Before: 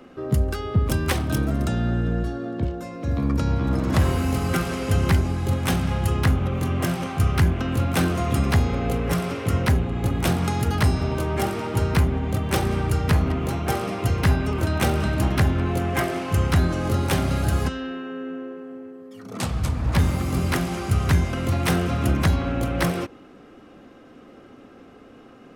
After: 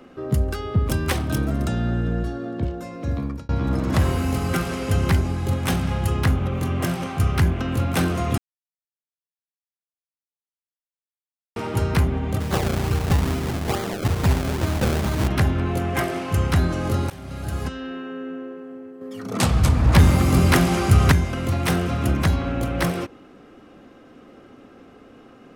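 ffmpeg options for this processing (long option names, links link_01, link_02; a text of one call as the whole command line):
ffmpeg -i in.wav -filter_complex "[0:a]asplit=3[link_01][link_02][link_03];[link_01]afade=type=out:start_time=12.39:duration=0.02[link_04];[link_02]acrusher=samples=32:mix=1:aa=0.000001:lfo=1:lforange=32:lforate=2.3,afade=type=in:start_time=12.39:duration=0.02,afade=type=out:start_time=15.27:duration=0.02[link_05];[link_03]afade=type=in:start_time=15.27:duration=0.02[link_06];[link_04][link_05][link_06]amix=inputs=3:normalize=0,asettb=1/sr,asplit=3[link_07][link_08][link_09];[link_07]atrim=end=19.014[link_10];[link_08]atrim=start=19.01:end=21.12,asetpts=PTS-STARTPTS,afade=type=in:duration=0.004:curve=qsin,afade=type=out:start_time=2.106:duration=0.004:curve=qsin,acontrast=88[link_11];[link_09]atrim=start=21.116[link_12];[link_10][link_11]acrossfade=duration=0.004:curve1=hsin:curve2=qsin[link_13];[link_13][link_12]acrossfade=duration=0.004:curve1=qsin:curve2=hsin,asplit=5[link_14][link_15][link_16][link_17][link_18];[link_14]atrim=end=3.49,asetpts=PTS-STARTPTS,afade=type=out:start_time=3.09:duration=0.4[link_19];[link_15]atrim=start=3.49:end=8.38,asetpts=PTS-STARTPTS,afade=type=in:duration=0.004:curve=hsin,afade=type=out:start_time=4.886:duration=0.004:curve=hsin[link_20];[link_16]atrim=start=8.38:end=11.56,asetpts=PTS-STARTPTS,volume=0[link_21];[link_17]atrim=start=11.56:end=17.1,asetpts=PTS-STARTPTS,afade=type=in:duration=0.004:curve=hsin,afade=type=out:start_time=5.536:duration=0.004:curve=hsin:silence=0.0707946[link_22];[link_18]atrim=start=17.1,asetpts=PTS-STARTPTS,afade=type=in:duration=0.89:silence=0.0707946[link_23];[link_19][link_20][link_21][link_22][link_23]concat=n=5:v=0:a=1" out.wav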